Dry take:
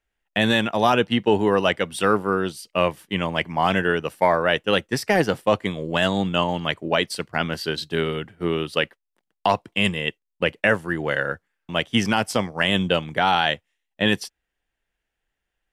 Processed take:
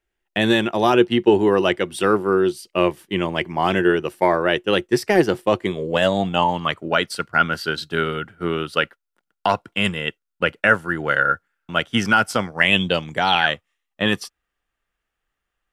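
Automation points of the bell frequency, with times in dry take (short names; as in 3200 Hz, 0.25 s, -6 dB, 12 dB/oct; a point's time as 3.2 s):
bell +14.5 dB 0.21 oct
5.68 s 360 Hz
6.84 s 1400 Hz
12.49 s 1400 Hz
13.17 s 8100 Hz
13.49 s 1200 Hz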